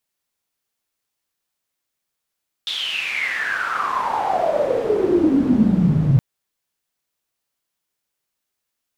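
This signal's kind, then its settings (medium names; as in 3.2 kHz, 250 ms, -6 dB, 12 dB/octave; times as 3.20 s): swept filtered noise pink, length 3.52 s bandpass, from 3.6 kHz, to 130 Hz, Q 11, exponential, gain ramp +10.5 dB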